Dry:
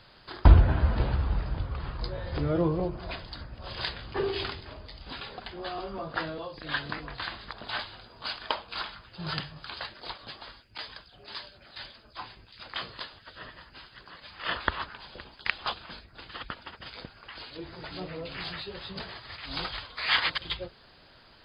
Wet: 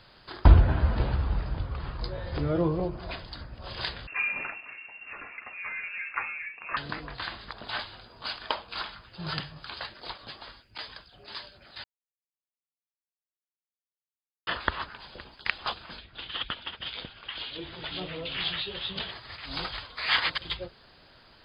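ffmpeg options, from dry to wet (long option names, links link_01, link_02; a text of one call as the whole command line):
ffmpeg -i in.wav -filter_complex "[0:a]asettb=1/sr,asplit=3[link_01][link_02][link_03];[link_01]atrim=end=4.074[link_04];[link_02]atrim=start=4.07:end=6.77,asetpts=PTS-STARTPTS,afade=type=in:duration=0.004:curve=qsin,afade=type=out:start_time=2.696:duration=0.004:curve=qsin,lowpass=frequency=2400:width_type=q:width=0.5098,lowpass=frequency=2400:width_type=q:width=0.6013,lowpass=frequency=2400:width_type=q:width=0.9,lowpass=frequency=2400:width_type=q:width=2.563,afreqshift=-2800[link_05];[link_03]atrim=start=6.766[link_06];[link_04][link_05]acrossfade=duration=0.004:curve1=hsin:curve2=qsin[link_07];[link_07][link_06]acrossfade=duration=0.004:curve1=qsin:curve2=hsin,asettb=1/sr,asplit=3[link_08][link_09][link_10];[link_08]atrim=end=15.984[link_11];[link_09]atrim=start=15.98:end=19.11,asetpts=PTS-STARTPTS,afade=type=in:duration=0.004:curve=qsin,afade=type=out:start_time=3.126:duration=0.004:curve=qsin,lowpass=frequency=3300:width_type=q:width=4.4[link_12];[link_10]atrim=start=19.106[link_13];[link_11][link_12]acrossfade=duration=0.004:curve1=hsin:curve2=qsin[link_14];[link_14][link_13]acrossfade=duration=0.004:curve1=qsin:curve2=hsin,asplit=3[link_15][link_16][link_17];[link_15]atrim=end=11.84,asetpts=PTS-STARTPTS,afade=type=out:start_time=11.836:duration=0.004:curve=hsin[link_18];[link_16]atrim=start=11.84:end=14.47,asetpts=PTS-STARTPTS,volume=0[link_19];[link_17]atrim=start=14.47,asetpts=PTS-STARTPTS,afade=type=in:duration=0.004:curve=hsin[link_20];[link_18][link_19][link_20]concat=n=3:v=0:a=1" out.wav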